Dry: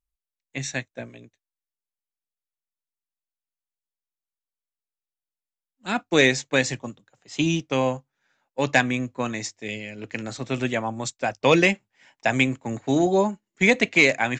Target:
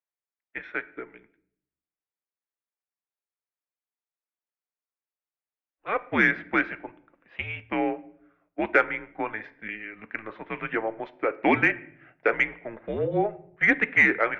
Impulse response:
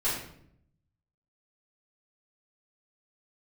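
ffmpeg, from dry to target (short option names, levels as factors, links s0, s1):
-filter_complex "[0:a]highpass=f=550:t=q:w=0.5412,highpass=f=550:t=q:w=1.307,lowpass=f=2600:t=q:w=0.5176,lowpass=f=2600:t=q:w=0.7071,lowpass=f=2600:t=q:w=1.932,afreqshift=-220,asplit=2[s0][s1];[1:a]atrim=start_sample=2205[s2];[s1][s2]afir=irnorm=-1:irlink=0,volume=0.0668[s3];[s0][s3]amix=inputs=2:normalize=0,aeval=exprs='0.501*(cos(1*acos(clip(val(0)/0.501,-1,1)))-cos(1*PI/2))+0.00631*(cos(5*acos(clip(val(0)/0.501,-1,1)))-cos(5*PI/2))':c=same"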